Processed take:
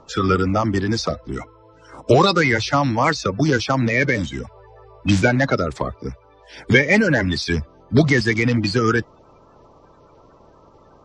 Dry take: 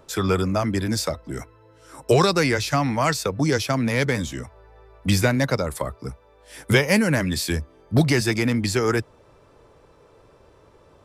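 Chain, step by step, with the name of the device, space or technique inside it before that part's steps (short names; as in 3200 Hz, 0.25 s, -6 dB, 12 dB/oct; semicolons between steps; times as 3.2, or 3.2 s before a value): clip after many re-uploads (LPF 5700 Hz 24 dB/oct; bin magnitudes rounded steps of 30 dB); gain +4 dB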